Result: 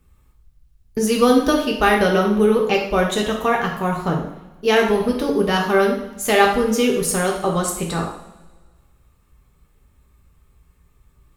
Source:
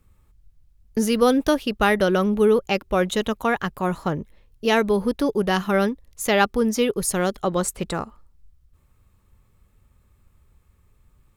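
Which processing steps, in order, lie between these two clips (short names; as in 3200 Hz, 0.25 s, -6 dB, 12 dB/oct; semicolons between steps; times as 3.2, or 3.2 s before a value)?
two-slope reverb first 0.62 s, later 1.7 s, from -17 dB, DRR -1.5 dB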